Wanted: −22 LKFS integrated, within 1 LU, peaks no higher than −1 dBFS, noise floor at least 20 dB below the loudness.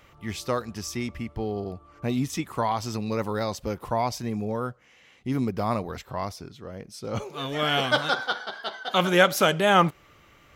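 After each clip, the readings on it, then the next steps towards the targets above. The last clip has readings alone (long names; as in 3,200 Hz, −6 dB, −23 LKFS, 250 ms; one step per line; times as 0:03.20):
integrated loudness −26.5 LKFS; sample peak −4.5 dBFS; target loudness −22.0 LKFS
→ level +4.5 dB
brickwall limiter −1 dBFS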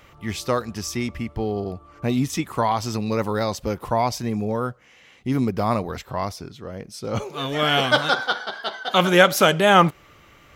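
integrated loudness −22.0 LKFS; sample peak −1.0 dBFS; background noise floor −52 dBFS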